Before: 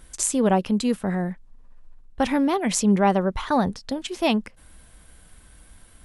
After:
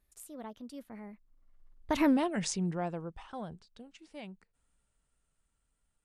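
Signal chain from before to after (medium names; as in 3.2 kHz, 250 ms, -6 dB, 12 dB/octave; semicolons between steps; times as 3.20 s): Doppler pass-by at 2.09 s, 46 m/s, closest 3 m; compression 2:1, threshold -33 dBFS, peak gain reduction 8 dB; trim +4.5 dB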